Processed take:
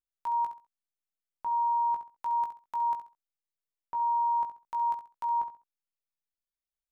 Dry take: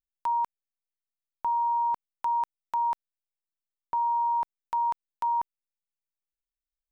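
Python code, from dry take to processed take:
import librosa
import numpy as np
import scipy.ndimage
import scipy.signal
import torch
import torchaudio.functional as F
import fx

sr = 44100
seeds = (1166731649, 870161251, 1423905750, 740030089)

p1 = fx.doubler(x, sr, ms=18.0, db=-6.0)
p2 = p1 + fx.echo_feedback(p1, sr, ms=67, feedback_pct=25, wet_db=-10.5, dry=0)
y = p2 * 10.0 ** (-7.0 / 20.0)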